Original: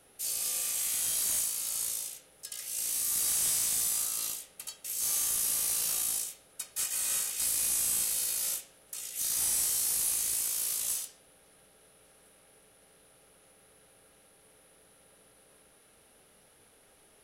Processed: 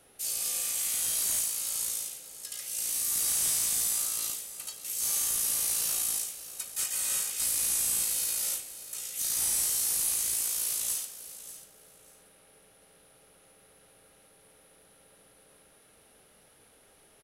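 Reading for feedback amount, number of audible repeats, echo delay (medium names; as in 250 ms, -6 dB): 20%, 2, 590 ms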